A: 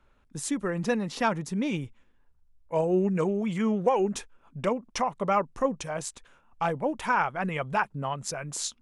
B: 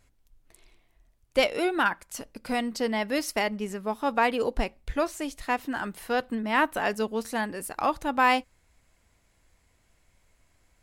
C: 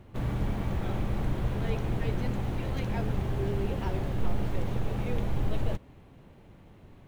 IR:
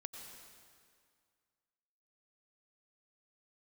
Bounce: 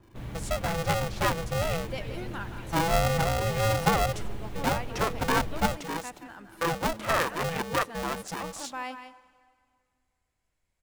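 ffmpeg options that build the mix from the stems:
-filter_complex "[0:a]highshelf=f=2.8k:g=-9,aeval=exprs='val(0)*sgn(sin(2*PI*330*n/s))':c=same,volume=-0.5dB,asplit=2[a][b];[b]volume=-17.5dB[c];[1:a]adelay=550,volume=-17dB,asplit=3[d][e][f];[e]volume=-6dB[g];[f]volume=-7dB[h];[2:a]adynamicequalizer=threshold=0.00178:dfrequency=1800:dqfactor=0.7:tfrequency=1800:tqfactor=0.7:attack=5:release=100:ratio=0.375:range=3:mode=boostabove:tftype=highshelf,volume=-8dB[i];[3:a]atrim=start_sample=2205[j];[c][g]amix=inputs=2:normalize=0[k];[k][j]afir=irnorm=-1:irlink=0[l];[h]aecho=0:1:173:1[m];[a][d][i][l][m]amix=inputs=5:normalize=0"

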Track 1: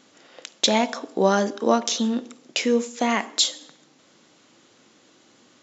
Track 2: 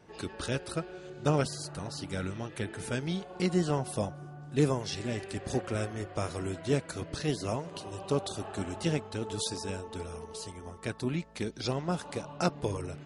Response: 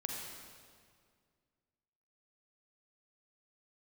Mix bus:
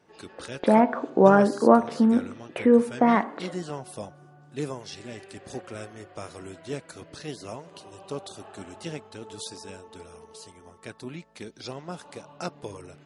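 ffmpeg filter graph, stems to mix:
-filter_complex "[0:a]lowpass=f=1.7k:w=0.5412,lowpass=f=1.7k:w=1.3066,agate=range=-33dB:threshold=-46dB:ratio=3:detection=peak,volume=2.5dB[a];[1:a]highpass=f=300:p=1,volume=-3.5dB[b];[a][b]amix=inputs=2:normalize=0,lowshelf=f=160:g=4.5"

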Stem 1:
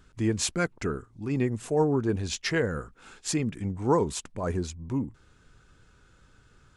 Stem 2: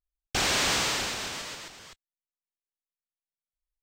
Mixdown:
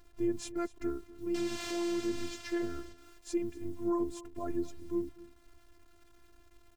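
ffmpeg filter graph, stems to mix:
-filter_complex "[0:a]tiltshelf=f=790:g=7.5,acrusher=bits=8:mix=0:aa=0.000001,volume=-5.5dB,asplit=2[a][b];[b]volume=-19.5dB[c];[1:a]adelay=1000,volume=-12.5dB,asplit=2[d][e];[e]volume=-4dB[f];[c][f]amix=inputs=2:normalize=0,aecho=0:1:246:1[g];[a][d][g]amix=inputs=3:normalize=0,afftfilt=real='hypot(re,im)*cos(PI*b)':imag='0':win_size=512:overlap=0.75,alimiter=limit=-22dB:level=0:latency=1:release=107"

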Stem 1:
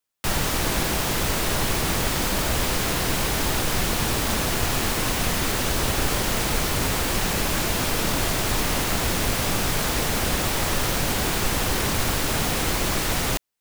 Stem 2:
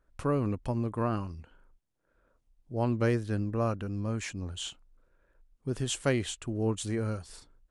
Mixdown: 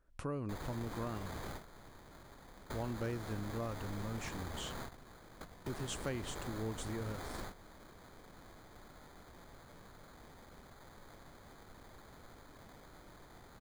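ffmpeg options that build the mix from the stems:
-filter_complex "[0:a]acrusher=samples=16:mix=1:aa=0.000001,adelay=250,volume=-15dB[a];[1:a]volume=-2dB,asplit=2[b][c];[c]apad=whole_len=610894[d];[a][d]sidechaingate=range=-18dB:threshold=-58dB:ratio=16:detection=peak[e];[e][b]amix=inputs=2:normalize=0,acompressor=threshold=-44dB:ratio=2"

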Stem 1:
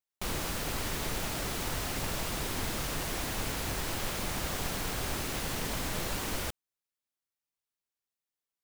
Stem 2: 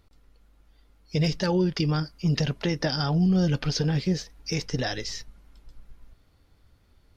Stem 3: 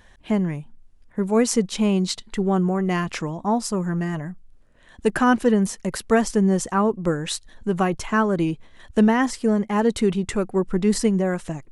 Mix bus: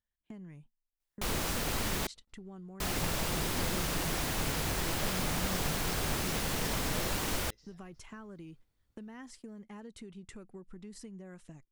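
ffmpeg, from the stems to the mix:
-filter_complex "[0:a]adelay=1000,volume=1dB,asplit=3[a][b][c];[a]atrim=end=2.07,asetpts=PTS-STARTPTS,afade=t=out:st=2.066:d=0.004:c=hsin[d];[b]atrim=start=2.07:end=2.8,asetpts=PTS-STARTPTS,volume=0[e];[c]atrim=start=2.8,asetpts=PTS-STARTPTS,afade=t=in:d=0.004:c=hsin[f];[d][e][f]concat=n=3:v=0:a=1[g];[1:a]adelay=1800,volume=-13.5dB,asplit=2[h][i];[i]volume=-5.5dB[j];[2:a]equalizer=f=710:w=0.73:g=-5.5,acompressor=threshold=-23dB:ratio=6,volume=-15.5dB,asplit=2[k][l];[l]apad=whole_len=395172[m];[h][m]sidechaingate=range=-33dB:threshold=-53dB:ratio=16:detection=peak[n];[n][k]amix=inputs=2:normalize=0,agate=range=-24dB:threshold=-52dB:ratio=16:detection=peak,acompressor=threshold=-48dB:ratio=2,volume=0dB[o];[j]aecho=0:1:365|730|1095|1460:1|0.24|0.0576|0.0138[p];[g][o][p]amix=inputs=3:normalize=0"

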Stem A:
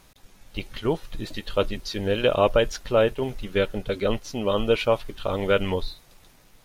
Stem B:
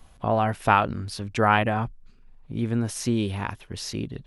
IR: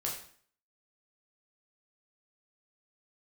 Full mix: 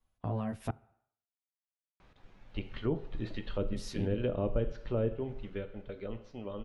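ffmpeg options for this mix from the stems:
-filter_complex "[0:a]lowpass=2.5k,adelay=2000,volume=-7dB,afade=t=out:st=5.1:d=0.55:silence=0.316228,asplit=2[a][b];[b]volume=-8dB[c];[1:a]agate=range=-20dB:threshold=-39dB:ratio=16:detection=peak,asplit=2[d][e];[e]adelay=10.3,afreqshift=1.8[f];[d][f]amix=inputs=2:normalize=1,volume=-4.5dB,asplit=3[g][h][i];[g]atrim=end=0.71,asetpts=PTS-STARTPTS,afade=t=out:st=0.706:d=0.004:c=hsin[j];[h]atrim=start=0.71:end=3.7,asetpts=PTS-STARTPTS,volume=0[k];[i]atrim=start=3.7,asetpts=PTS-STARTPTS,afade=t=in:d=0.004:c=hsin[l];[j][k][l]concat=n=3:v=0:a=1,asplit=2[m][n];[n]volume=-20.5dB[o];[2:a]atrim=start_sample=2205[p];[c][o]amix=inputs=2:normalize=0[q];[q][p]afir=irnorm=-1:irlink=0[r];[a][m][r]amix=inputs=3:normalize=0,acrossover=split=380[s][t];[t]acompressor=threshold=-43dB:ratio=4[u];[s][u]amix=inputs=2:normalize=0"

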